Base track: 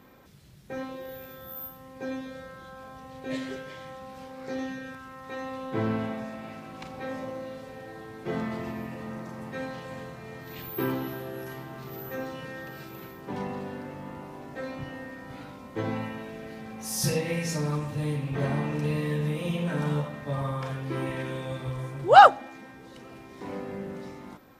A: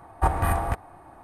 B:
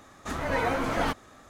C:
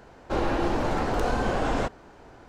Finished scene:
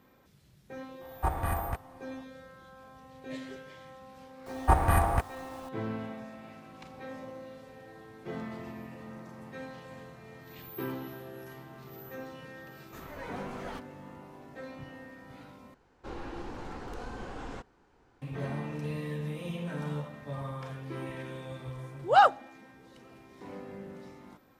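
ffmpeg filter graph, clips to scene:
ffmpeg -i bed.wav -i cue0.wav -i cue1.wav -i cue2.wav -filter_complex "[1:a]asplit=2[link_01][link_02];[0:a]volume=-7.5dB[link_03];[link_02]acrusher=bits=8:mix=0:aa=0.000001[link_04];[3:a]equalizer=frequency=630:width_type=o:width=0.24:gain=-10[link_05];[link_03]asplit=2[link_06][link_07];[link_06]atrim=end=15.744[link_08];[link_05]atrim=end=2.48,asetpts=PTS-STARTPTS,volume=-14.5dB[link_09];[link_07]atrim=start=18.216[link_10];[link_01]atrim=end=1.23,asetpts=PTS-STARTPTS,volume=-7.5dB,afade=type=in:duration=0.004:curve=hsin,afade=type=out:start_time=1.226:duration=0.004:curve=hsin,adelay=1010[link_11];[link_04]atrim=end=1.23,asetpts=PTS-STARTPTS,volume=-0.5dB,afade=type=in:duration=0.004:curve=hsin,afade=type=out:start_time=1.226:duration=0.004:curve=hsin,adelay=4460[link_12];[2:a]atrim=end=1.49,asetpts=PTS-STARTPTS,volume=-15dB,afade=type=in:duration=0.004:curve=hsin,afade=type=out:start_time=1.486:duration=0.004:curve=hsin,adelay=12670[link_13];[link_08][link_09]acrossfade=duration=0.004:curve1=hsin:curve2=hsin[link_14];[link_14][link_10]acrossfade=duration=0.004:curve1=hsin:curve2=hsin[link_15];[link_15][link_11][link_12][link_13]amix=inputs=4:normalize=0" out.wav

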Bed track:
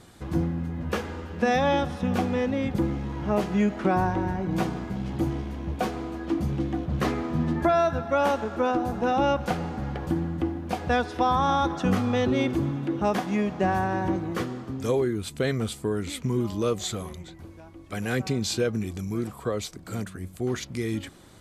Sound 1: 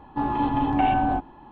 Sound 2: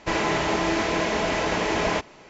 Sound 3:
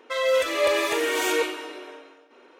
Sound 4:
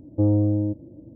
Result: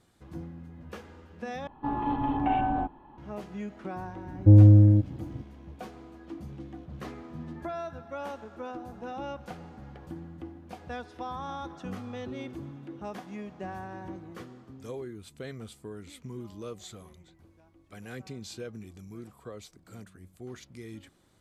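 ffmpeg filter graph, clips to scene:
ffmpeg -i bed.wav -i cue0.wav -i cue1.wav -i cue2.wav -i cue3.wav -filter_complex "[0:a]volume=-14.5dB[link_01];[1:a]highshelf=frequency=2700:gain=-6[link_02];[4:a]bass=frequency=250:gain=14,treble=frequency=4000:gain=13[link_03];[link_01]asplit=2[link_04][link_05];[link_04]atrim=end=1.674[link_06];[link_02]atrim=end=1.51,asetpts=PTS-STARTPTS,volume=-5dB[link_07];[link_05]atrim=start=3.176[link_08];[link_03]atrim=end=1.15,asetpts=PTS-STARTPTS,volume=-5dB,afade=type=in:duration=0.004:curve=hsin,afade=type=out:start_time=1.146:duration=0.004:curve=hsin,adelay=4280[link_09];[link_06][link_07]acrossfade=duration=0.004:curve1=hsin:curve2=hsin[link_10];[link_10][link_08]acrossfade=duration=0.004:curve1=hsin:curve2=hsin[link_11];[link_11][link_09]amix=inputs=2:normalize=0" out.wav

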